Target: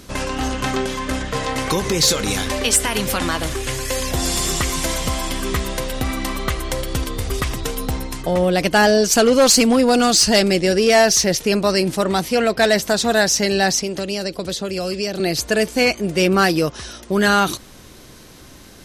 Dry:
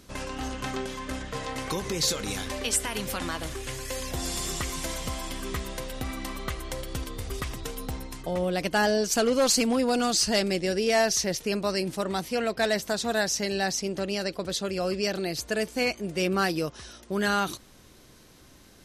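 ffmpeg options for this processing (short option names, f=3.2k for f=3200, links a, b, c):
-filter_complex "[0:a]asettb=1/sr,asplit=3[a][b][c];[a]atrim=end=13.794[d];[b]atrim=start=13.79:end=15.2,asetpts=PTS-STARTPTS,afade=t=in:d=0.004:c=qsin,afade=t=out:st=1.406:d=0.004:c=qsin,acrossover=split=380|850|2300|4800[e][f][g][h][i];[e]acompressor=threshold=-38dB:ratio=4[j];[f]acompressor=threshold=-39dB:ratio=4[k];[g]acompressor=threshold=-52dB:ratio=4[l];[h]acompressor=threshold=-43dB:ratio=4[m];[i]acompressor=threshold=-42dB:ratio=4[n];[j][k][l][m][n]amix=inputs=5:normalize=0[o];[c]atrim=start=15.196[p];[d][o]acrossfade=d=0.004:c1=hsin:c2=qsin[q];[q][p]acrossfade=d=0.004:c1=qsin:c2=hsin,asplit=2[r][s];[s]asoftclip=type=tanh:threshold=-22.5dB,volume=-4.5dB[t];[r][t]amix=inputs=2:normalize=0,volume=7dB"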